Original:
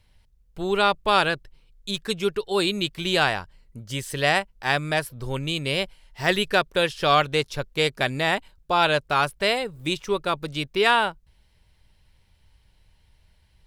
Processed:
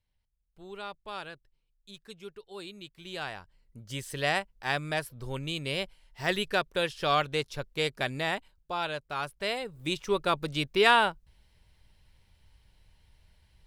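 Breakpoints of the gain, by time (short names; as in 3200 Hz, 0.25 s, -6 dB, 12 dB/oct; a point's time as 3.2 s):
2.93 s -20 dB
3.88 s -7 dB
8.21 s -7 dB
9 s -14 dB
10.24 s -2 dB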